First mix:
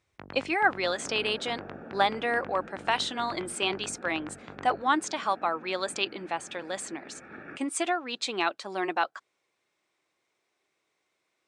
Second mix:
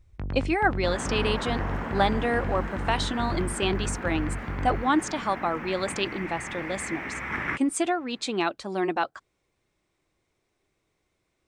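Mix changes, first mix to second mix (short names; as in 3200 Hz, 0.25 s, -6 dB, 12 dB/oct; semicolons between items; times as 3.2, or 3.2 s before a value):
second sound: remove running mean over 43 samples; master: remove weighting filter A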